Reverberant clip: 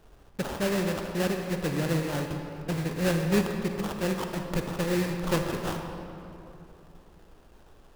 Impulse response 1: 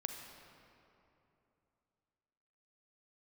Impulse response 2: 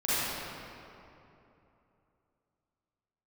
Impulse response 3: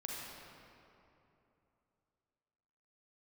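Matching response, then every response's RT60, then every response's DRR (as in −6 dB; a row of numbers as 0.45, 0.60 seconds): 1; 2.9, 2.9, 2.9 seconds; 4.0, −13.5, −3.5 decibels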